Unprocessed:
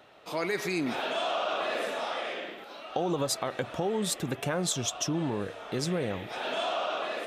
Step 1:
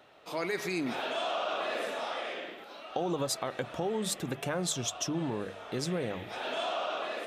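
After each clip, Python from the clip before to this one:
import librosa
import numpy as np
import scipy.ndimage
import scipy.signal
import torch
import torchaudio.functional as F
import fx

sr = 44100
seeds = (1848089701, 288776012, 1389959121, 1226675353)

y = fx.hum_notches(x, sr, base_hz=50, count=4)
y = F.gain(torch.from_numpy(y), -2.5).numpy()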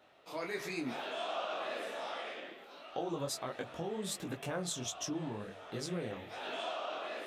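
y = fx.detune_double(x, sr, cents=48)
y = F.gain(torch.from_numpy(y), -2.0).numpy()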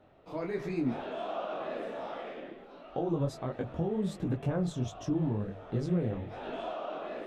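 y = fx.tilt_eq(x, sr, slope=-4.5)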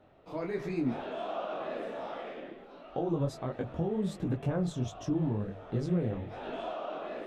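y = x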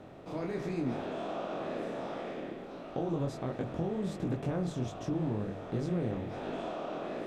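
y = fx.bin_compress(x, sr, power=0.6)
y = F.gain(torch.from_numpy(y), -5.0).numpy()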